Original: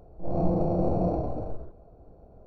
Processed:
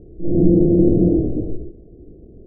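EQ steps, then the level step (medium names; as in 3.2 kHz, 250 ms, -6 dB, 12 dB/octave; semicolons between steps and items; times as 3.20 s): elliptic low-pass 770 Hz, stop band 40 dB; resonant low shelf 520 Hz +13.5 dB, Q 3; -4.0 dB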